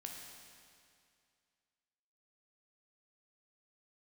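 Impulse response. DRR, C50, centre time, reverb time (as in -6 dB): 0.5 dB, 2.0 dB, 84 ms, 2.3 s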